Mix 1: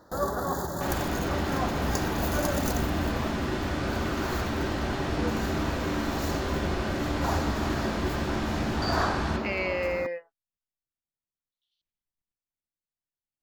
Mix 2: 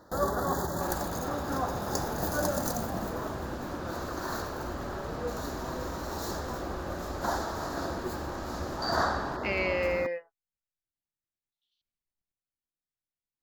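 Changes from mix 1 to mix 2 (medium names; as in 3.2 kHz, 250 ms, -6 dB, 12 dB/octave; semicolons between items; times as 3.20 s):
second sound -10.0 dB; reverb: off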